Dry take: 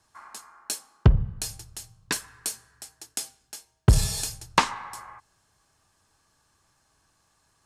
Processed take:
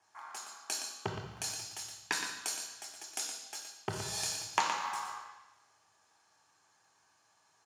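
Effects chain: in parallel at -9 dB: bit-crush 6-bit; on the sum: compressor 4:1, threshold -26 dBFS, peak gain reduction 15 dB; weighting filter A; echo 0.118 s -8.5 dB; reverb RT60 1.1 s, pre-delay 3 ms, DRR 3 dB

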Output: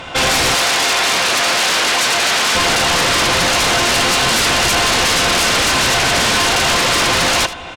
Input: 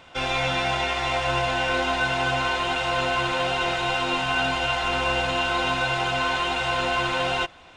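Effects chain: sine folder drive 15 dB, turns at -11.5 dBFS; 0.54–2.55 HPF 490 Hz 6 dB/oct; echo 79 ms -14.5 dB

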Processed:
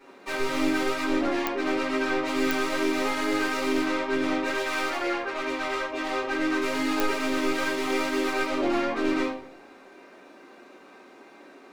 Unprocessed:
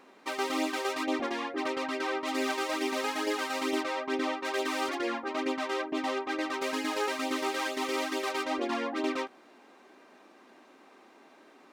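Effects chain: 4.45–6.23 HPF 490 Hz 12 dB/oct; soft clip -28 dBFS, distortion -13 dB; shoebox room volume 88 m³, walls mixed, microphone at 2.6 m; pops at 1.47/2.51/7, -5 dBFS; gain -4.5 dB

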